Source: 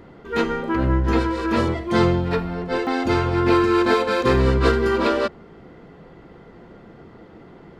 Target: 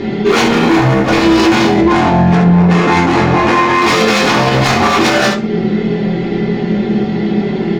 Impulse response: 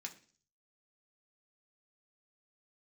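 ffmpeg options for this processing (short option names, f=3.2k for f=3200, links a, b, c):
-filter_complex "[0:a]lowpass=f=5.3k:w=0.5412,lowpass=f=5.3k:w=1.3066,equalizer=f=1.2k:w=1.2:g=-15,aecho=1:1:5.1:0.61,acompressor=threshold=-31dB:ratio=3,aeval=exprs='0.0299*(abs(mod(val(0)/0.0299+3,4)-2)-1)':c=same,asettb=1/sr,asplit=3[a][b][c];[a]atrim=end=1.744[d];[b]atrim=start=1.74:end=3.82,asetpts=PTS-STARTPTS,afade=t=in:d=0.004:c=qsin,afade=t=out:st=2.076:d=0.004:c=qsin,adynamicsmooth=sensitivity=7:basefreq=1k[e];[c]atrim=start=3.816[f];[d][e]acrossfade=d=0.004:c1=hsin:c2=qsin[g];[g][f]acrossfade=d=0.004:c1=qsin:c2=hsin,aecho=1:1:24|68:0.562|0.376[h];[1:a]atrim=start_sample=2205,afade=t=out:st=0.19:d=0.01,atrim=end_sample=8820[i];[h][i]afir=irnorm=-1:irlink=0,alimiter=level_in=33.5dB:limit=-1dB:release=50:level=0:latency=1,volume=-1dB"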